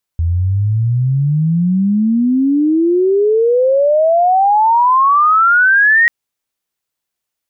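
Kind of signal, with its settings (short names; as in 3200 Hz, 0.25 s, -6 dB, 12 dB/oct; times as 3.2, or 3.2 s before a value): chirp logarithmic 81 Hz -> 1900 Hz -11.5 dBFS -> -6.5 dBFS 5.89 s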